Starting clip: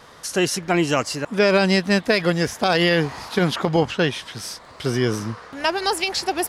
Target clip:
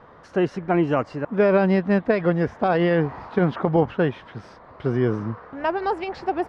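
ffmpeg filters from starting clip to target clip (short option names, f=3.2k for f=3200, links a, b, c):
-af "lowpass=1.3k"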